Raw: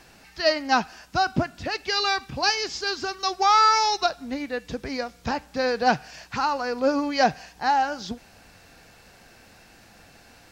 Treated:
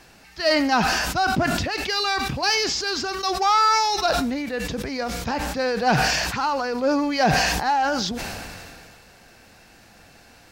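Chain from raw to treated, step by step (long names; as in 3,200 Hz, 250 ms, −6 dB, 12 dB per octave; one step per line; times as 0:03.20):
in parallel at −9 dB: hard clipping −25.5 dBFS, distortion −5 dB
on the sum: level that may fall only so fast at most 25 dB per second
level −1.5 dB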